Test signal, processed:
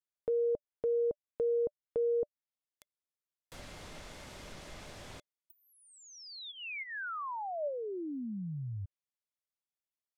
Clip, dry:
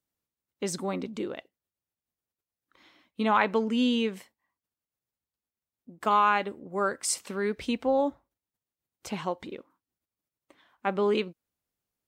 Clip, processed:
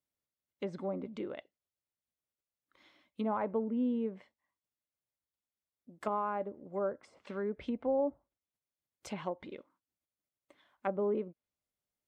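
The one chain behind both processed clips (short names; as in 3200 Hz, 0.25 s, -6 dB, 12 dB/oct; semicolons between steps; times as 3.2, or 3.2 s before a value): small resonant body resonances 590/2100/3400 Hz, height 7 dB, ringing for 50 ms; treble ducked by the level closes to 760 Hz, closed at -25 dBFS; gain -6.5 dB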